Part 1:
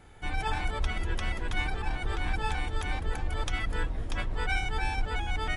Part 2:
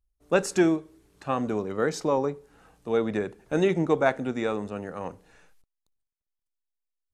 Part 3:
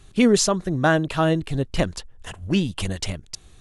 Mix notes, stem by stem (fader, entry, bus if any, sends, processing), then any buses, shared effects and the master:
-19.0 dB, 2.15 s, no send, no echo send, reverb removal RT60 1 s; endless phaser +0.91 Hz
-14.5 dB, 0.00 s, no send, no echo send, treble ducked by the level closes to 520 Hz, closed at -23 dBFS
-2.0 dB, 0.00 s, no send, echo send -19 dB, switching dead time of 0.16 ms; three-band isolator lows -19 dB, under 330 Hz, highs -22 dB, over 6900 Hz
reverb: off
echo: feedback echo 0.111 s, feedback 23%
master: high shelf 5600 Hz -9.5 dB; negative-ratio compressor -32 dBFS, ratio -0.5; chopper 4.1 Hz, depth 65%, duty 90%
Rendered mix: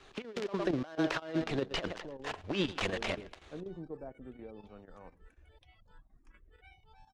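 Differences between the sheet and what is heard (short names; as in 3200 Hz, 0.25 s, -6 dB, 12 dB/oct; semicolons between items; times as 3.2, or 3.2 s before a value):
stem 1 -19.0 dB -> -29.5 dB; stem 2 -14.5 dB -> -23.5 dB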